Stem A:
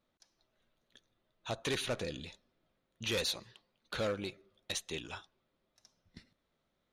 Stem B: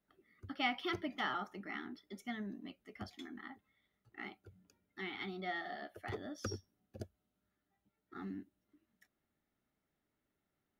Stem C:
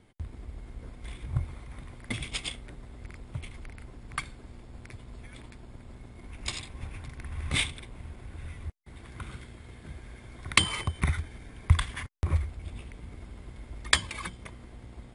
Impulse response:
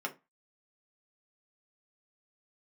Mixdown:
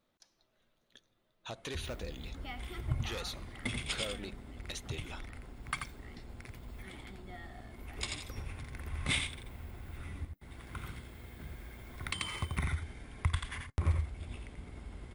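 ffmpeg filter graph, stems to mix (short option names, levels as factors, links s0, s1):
-filter_complex "[0:a]acompressor=threshold=0.00355:ratio=2,volume=1.33[s0];[1:a]acompressor=mode=upward:threshold=0.00501:ratio=2.5,aexciter=amount=9.6:drive=7.2:freq=12000,adelay=1850,volume=0.299,asplit=2[s1][s2];[s2]volume=0.188[s3];[2:a]adelay=1550,volume=0.631,asplit=3[s4][s5][s6];[s5]volume=0.211[s7];[s6]volume=0.562[s8];[3:a]atrim=start_sample=2205[s9];[s7][s9]afir=irnorm=-1:irlink=0[s10];[s3][s8]amix=inputs=2:normalize=0,aecho=0:1:86:1[s11];[s0][s1][s4][s10][s11]amix=inputs=5:normalize=0,alimiter=limit=0.106:level=0:latency=1:release=355"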